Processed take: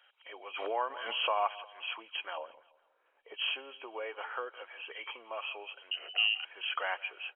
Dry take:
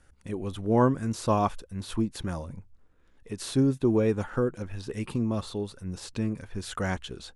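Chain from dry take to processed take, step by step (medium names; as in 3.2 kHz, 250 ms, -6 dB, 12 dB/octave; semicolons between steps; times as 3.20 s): knee-point frequency compression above 2.2 kHz 4:1; 2.37–3.34 s: tilt shelf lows +10 dB, about 1.2 kHz; feedback delay 167 ms, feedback 46%, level -22 dB; compression 4:1, threshold -24 dBFS, peak gain reduction 7.5 dB; 5.91–6.45 s: frequency inversion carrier 3 kHz; inverse Chebyshev high-pass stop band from 190 Hz, stop band 60 dB; 0.56–1.62 s: swell ahead of each attack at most 40 dB/s; trim +1 dB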